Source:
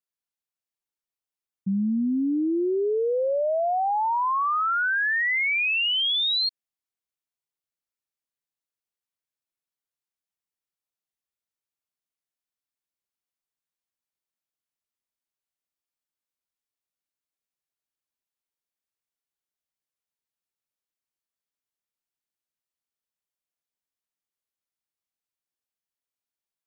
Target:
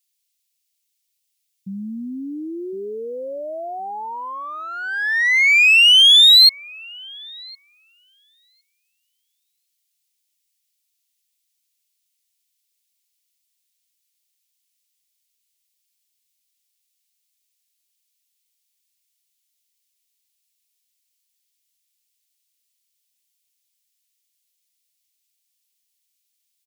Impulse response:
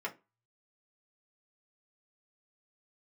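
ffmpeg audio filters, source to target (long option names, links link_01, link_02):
-filter_complex "[0:a]asplit=2[link_01][link_02];[link_02]adelay=1061,lowpass=frequency=840:poles=1,volume=-17dB,asplit=2[link_03][link_04];[link_04]adelay=1061,lowpass=frequency=840:poles=1,volume=0.29,asplit=2[link_05][link_06];[link_06]adelay=1061,lowpass=frequency=840:poles=1,volume=0.29[link_07];[link_01][link_03][link_05][link_07]amix=inputs=4:normalize=0,aexciter=amount=6.1:drive=9.1:freq=2000,volume=-5.5dB"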